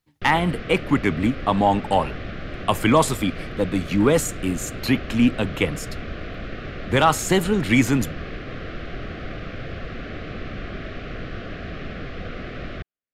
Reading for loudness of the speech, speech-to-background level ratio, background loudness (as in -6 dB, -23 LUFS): -21.5 LUFS, 12.5 dB, -34.0 LUFS